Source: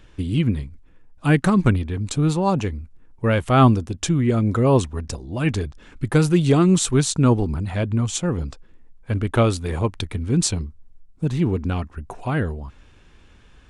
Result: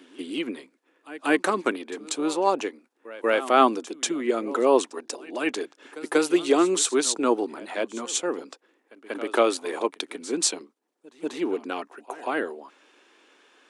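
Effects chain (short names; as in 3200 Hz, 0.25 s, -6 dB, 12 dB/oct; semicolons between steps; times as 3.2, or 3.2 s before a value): steep high-pass 300 Hz 36 dB/oct; pre-echo 0.188 s -18 dB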